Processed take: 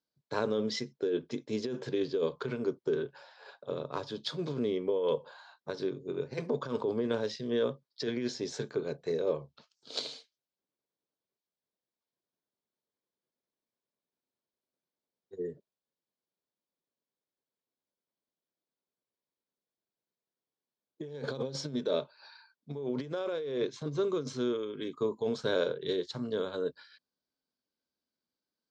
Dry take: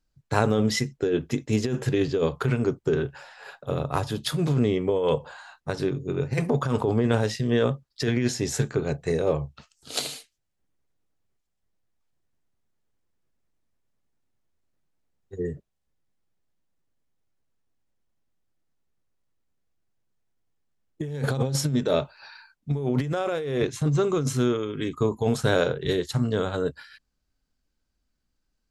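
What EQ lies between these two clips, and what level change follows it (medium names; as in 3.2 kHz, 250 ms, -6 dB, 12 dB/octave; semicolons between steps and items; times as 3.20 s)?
dynamic bell 750 Hz, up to -6 dB, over -42 dBFS, Q 3.1; cabinet simulation 300–5100 Hz, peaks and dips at 310 Hz -3 dB, 770 Hz -6 dB, 1.3 kHz -7 dB, 1.9 kHz -9 dB, 2.7 kHz -9 dB; -3.5 dB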